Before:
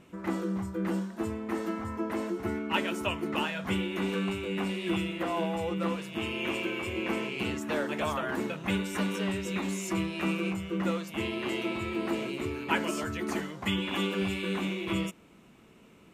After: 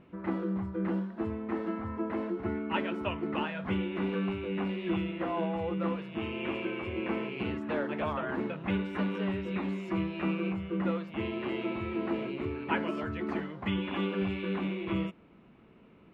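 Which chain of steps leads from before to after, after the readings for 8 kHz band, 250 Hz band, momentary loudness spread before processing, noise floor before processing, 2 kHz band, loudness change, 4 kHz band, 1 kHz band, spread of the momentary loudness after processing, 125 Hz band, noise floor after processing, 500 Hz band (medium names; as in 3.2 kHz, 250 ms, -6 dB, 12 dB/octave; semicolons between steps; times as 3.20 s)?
under -25 dB, -0.5 dB, 3 LU, -56 dBFS, -4.5 dB, -1.5 dB, -7.5 dB, -2.0 dB, 3 LU, -0.5 dB, -57 dBFS, -1.0 dB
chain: distance through air 400 m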